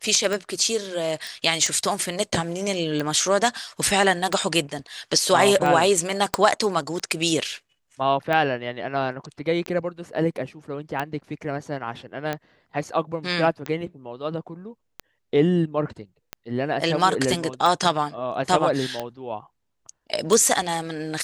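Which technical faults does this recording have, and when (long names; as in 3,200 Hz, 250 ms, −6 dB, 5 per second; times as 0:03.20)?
scratch tick 45 rpm
0:01.27: click
0:06.34: click −5 dBFS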